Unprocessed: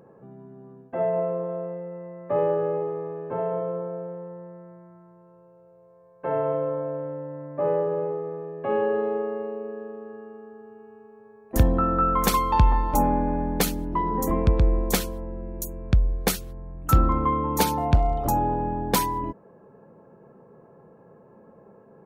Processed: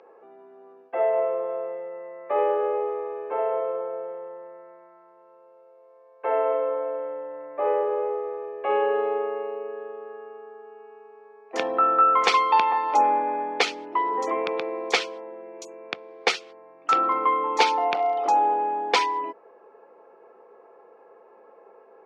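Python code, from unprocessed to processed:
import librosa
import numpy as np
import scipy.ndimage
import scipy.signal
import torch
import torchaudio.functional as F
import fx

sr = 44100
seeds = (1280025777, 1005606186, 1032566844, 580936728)

y = fx.cabinet(x, sr, low_hz=480.0, low_slope=24, high_hz=4700.0, hz=(590.0, 1000.0, 1600.0, 2300.0, 4000.0), db=(-9, -5, -6, 4, -4))
y = y * 10.0 ** (8.0 / 20.0)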